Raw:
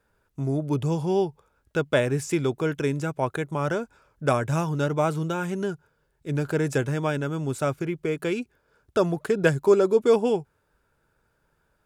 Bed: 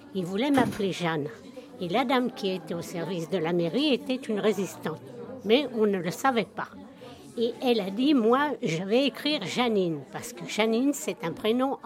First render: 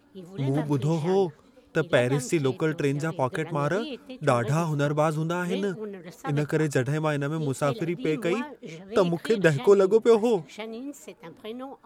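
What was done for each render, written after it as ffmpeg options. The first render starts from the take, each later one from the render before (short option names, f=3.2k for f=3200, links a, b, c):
-filter_complex "[1:a]volume=-12dB[a];[0:a][a]amix=inputs=2:normalize=0"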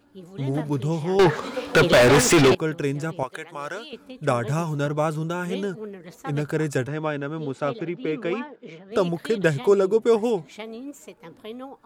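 -filter_complex "[0:a]asettb=1/sr,asplit=3[a][b][c];[a]atrim=end=1.194[d];[b]atrim=start=1.19:end=2.55,asetpts=PTS-STARTPTS,afade=t=in:d=0.004:c=qsin,afade=t=out:st=1.356:d=0.004:c=qsin,asplit=2[e][f];[f]highpass=f=720:p=1,volume=37dB,asoftclip=type=tanh:threshold=-7.5dB[g];[e][g]amix=inputs=2:normalize=0,lowpass=f=3.4k:p=1,volume=-6dB[h];[c]atrim=start=2.546[i];[d][h]acrossfade=d=0.004:c1=hsin:c2=qsin[j];[j][i]acrossfade=d=0.004:c1=qsin:c2=hsin,asettb=1/sr,asplit=3[k][l][m];[k]atrim=end=3.234[n];[l]atrim=start=3.23:end=3.93,asetpts=PTS-STARTPTS,afade=t=in:d=0.004:c=qsin,afade=t=out:st=0.696:d=0.004:c=qsin,highpass=f=1.1k:p=1[o];[m]atrim=start=3.926[p];[n][o]acrossfade=d=0.004:c1=hsin:c2=qsin[q];[q][p]acrossfade=d=0.004:c1=qsin:c2=hsin,asettb=1/sr,asplit=3[r][s][t];[r]atrim=end=6.874[u];[s]atrim=start=6.87:end=8.92,asetpts=PTS-STARTPTS,afade=t=in:d=0.004:c=qsin,afade=t=out:st=2.046:d=0.004:c=qsin,highpass=170,lowpass=3.8k[v];[t]atrim=start=8.916[w];[u][v]acrossfade=d=0.004:c1=hsin:c2=qsin[x];[x][w]acrossfade=d=0.004:c1=qsin:c2=hsin"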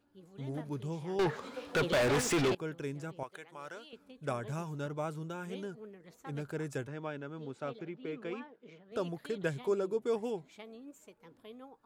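-af "volume=-13.5dB"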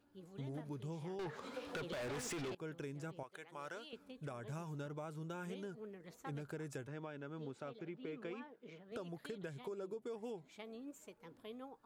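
-af "alimiter=level_in=8.5dB:limit=-24dB:level=0:latency=1:release=460,volume=-8.5dB,acompressor=threshold=-42dB:ratio=4"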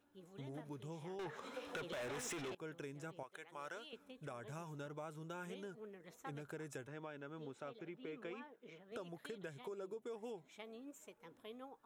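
-af "lowshelf=f=280:g=-7,bandreject=f=4.6k:w=5.9"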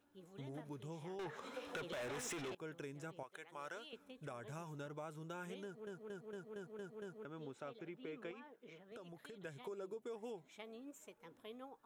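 -filter_complex "[0:a]asettb=1/sr,asplit=3[a][b][c];[a]atrim=end=8.314[d];[b]atrim=start=8.31:end=9.45,asetpts=PTS-STARTPTS,afade=t=in:d=0.004:c=qsin,afade=t=out:st=1.136:d=0.004:c=qsin,acompressor=threshold=-52dB:ratio=2.5:attack=3.2:release=140:knee=1:detection=peak[e];[c]atrim=start=9.446[f];[d][e]acrossfade=d=0.004:c1=hsin:c2=qsin[g];[g][f]acrossfade=d=0.004:c1=qsin:c2=hsin,asplit=8[h][i][j][k][l][m][n][o];[h]atrim=end=5.872[p];[i]atrim=start=5.638:end=5.872[q];[j]atrim=start=5.638:end=5.872[r];[k]atrim=start=5.638:end=5.872[s];[l]atrim=start=5.638:end=5.872[t];[m]atrim=start=5.638:end=5.872[u];[n]atrim=start=5.638:end=5.872[v];[o]atrim=start=7.248[w];[p][q]acrossfade=d=0.004:c1=hsin:c2=hsin[x];[x][r]acrossfade=d=0.004:c1=hsin:c2=hsin[y];[y][s]acrossfade=d=0.004:c1=hsin:c2=hsin[z];[z][t]acrossfade=d=0.004:c1=hsin:c2=hsin[aa];[aa][u]acrossfade=d=0.004:c1=hsin:c2=hsin[ab];[ab][v]acrossfade=d=0.004:c1=hsin:c2=hsin[ac];[ac][w]acrossfade=d=0.004:c1=hsin:c2=hsin"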